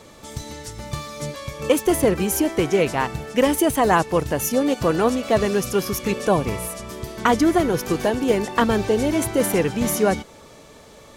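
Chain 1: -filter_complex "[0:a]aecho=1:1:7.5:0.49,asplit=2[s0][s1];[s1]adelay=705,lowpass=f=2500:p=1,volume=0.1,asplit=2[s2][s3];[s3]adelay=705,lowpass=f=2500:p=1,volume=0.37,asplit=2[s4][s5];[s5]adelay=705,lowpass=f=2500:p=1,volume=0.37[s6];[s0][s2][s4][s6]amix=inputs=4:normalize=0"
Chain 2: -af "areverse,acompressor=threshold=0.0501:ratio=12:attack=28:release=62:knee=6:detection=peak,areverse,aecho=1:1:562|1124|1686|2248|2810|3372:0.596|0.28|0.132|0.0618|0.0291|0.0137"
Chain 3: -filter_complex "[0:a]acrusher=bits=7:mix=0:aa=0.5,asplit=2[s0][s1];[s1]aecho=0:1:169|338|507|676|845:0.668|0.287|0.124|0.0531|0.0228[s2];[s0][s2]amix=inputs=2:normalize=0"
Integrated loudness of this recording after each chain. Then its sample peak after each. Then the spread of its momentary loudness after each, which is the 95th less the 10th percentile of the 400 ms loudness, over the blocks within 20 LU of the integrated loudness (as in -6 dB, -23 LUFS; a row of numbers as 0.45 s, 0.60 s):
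-20.0 LUFS, -26.0 LUFS, -19.0 LUFS; -3.0 dBFS, -11.5 dBFS, -3.0 dBFS; 16 LU, 7 LU, 14 LU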